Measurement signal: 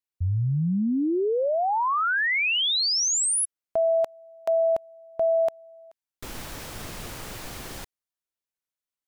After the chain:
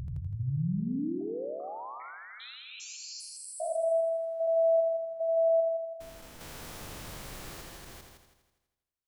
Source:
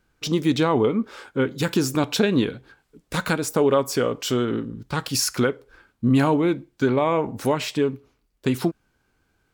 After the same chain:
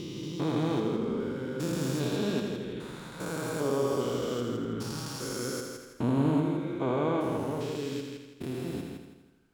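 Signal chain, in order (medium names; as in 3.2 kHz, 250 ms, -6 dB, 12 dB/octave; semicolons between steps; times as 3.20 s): spectrogram pixelated in time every 400 ms; on a send: multi-head delay 82 ms, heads first and second, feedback 45%, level -7.5 dB; on the sum: dynamic bell 2.2 kHz, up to -4 dB, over -43 dBFS, Q 1.2; trim -5.5 dB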